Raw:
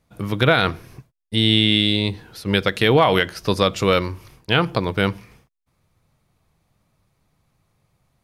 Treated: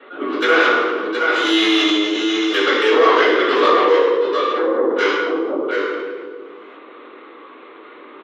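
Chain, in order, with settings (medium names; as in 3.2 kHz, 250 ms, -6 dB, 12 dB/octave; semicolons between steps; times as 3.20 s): 3.84–4.92 s: steep low-pass 840 Hz 96 dB/octave; delay 717 ms -6 dB; LPC vocoder at 8 kHz pitch kept; Chebyshev shaper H 8 -17 dB, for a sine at 0.5 dBFS; steep high-pass 410 Hz 36 dB/octave; reverberation RT60 1.1 s, pre-delay 3 ms, DRR -14 dB; level flattener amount 50%; trim -17.5 dB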